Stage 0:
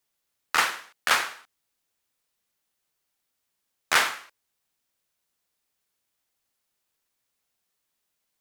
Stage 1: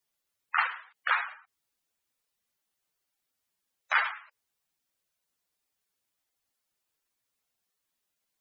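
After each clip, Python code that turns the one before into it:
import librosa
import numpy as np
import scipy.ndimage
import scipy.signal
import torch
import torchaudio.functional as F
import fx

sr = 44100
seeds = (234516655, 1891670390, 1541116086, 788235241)

y = fx.spec_gate(x, sr, threshold_db=-10, keep='strong')
y = y * librosa.db_to_amplitude(-2.5)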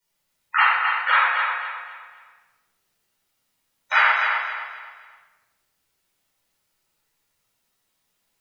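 y = fx.echo_feedback(x, sr, ms=260, feedback_pct=34, wet_db=-6)
y = fx.room_shoebox(y, sr, seeds[0], volume_m3=600.0, walls='mixed', distance_m=4.6)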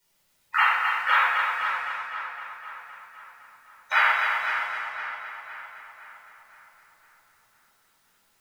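y = fx.law_mismatch(x, sr, coded='mu')
y = fx.echo_tape(y, sr, ms=513, feedback_pct=52, wet_db=-7.0, lp_hz=4000.0, drive_db=6.0, wow_cents=22)
y = y * librosa.db_to_amplitude(-3.5)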